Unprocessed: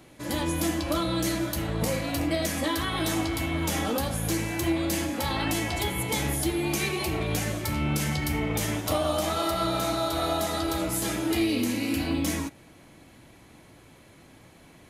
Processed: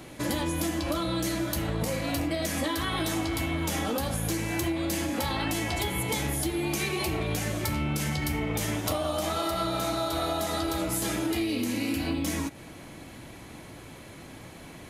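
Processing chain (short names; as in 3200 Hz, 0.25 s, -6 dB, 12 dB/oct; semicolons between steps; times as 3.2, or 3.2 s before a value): compressor, threshold -34 dBFS, peak gain reduction 12 dB; gain +7.5 dB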